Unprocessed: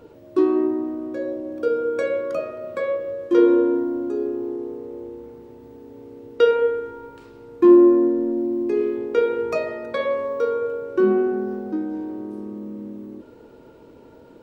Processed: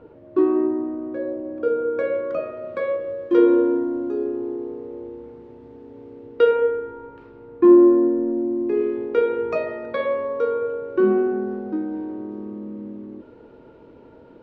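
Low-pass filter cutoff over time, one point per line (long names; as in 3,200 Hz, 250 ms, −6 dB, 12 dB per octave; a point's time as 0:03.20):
0:02.11 2,100 Hz
0:02.70 3,500 Hz
0:06.10 3,500 Hz
0:06.85 2,100 Hz
0:08.50 2,100 Hz
0:08.98 3,100 Hz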